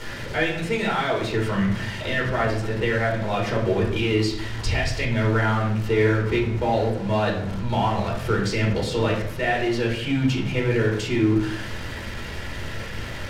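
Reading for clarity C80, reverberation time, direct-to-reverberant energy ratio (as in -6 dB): 9.0 dB, 0.65 s, -2.5 dB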